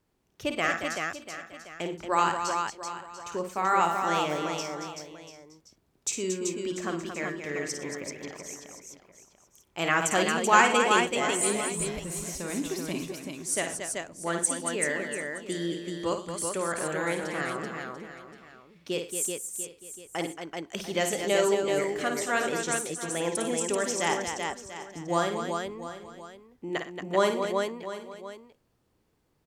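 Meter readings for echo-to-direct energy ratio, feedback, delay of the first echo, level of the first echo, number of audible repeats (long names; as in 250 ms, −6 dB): −0.5 dB, repeats not evenly spaced, 53 ms, −7.5 dB, 9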